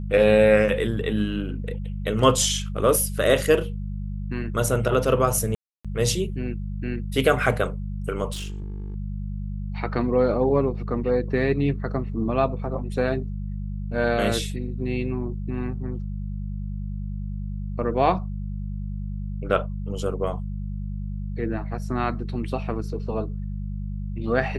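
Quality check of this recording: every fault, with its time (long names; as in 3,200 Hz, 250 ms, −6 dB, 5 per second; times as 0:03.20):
mains hum 50 Hz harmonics 4 −30 dBFS
0:05.55–0:05.85: drop-out 296 ms
0:08.32–0:08.96: clipping −28 dBFS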